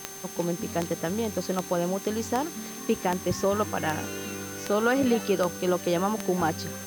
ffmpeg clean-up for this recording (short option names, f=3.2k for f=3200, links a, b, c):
-af "adeclick=t=4,bandreject=f=389:t=h:w=4,bandreject=f=778:t=h:w=4,bandreject=f=1.167k:t=h:w=4,bandreject=f=1.556k:t=h:w=4,bandreject=f=1.945k:t=h:w=4,bandreject=f=6.3k:w=30,afwtdn=0.0063"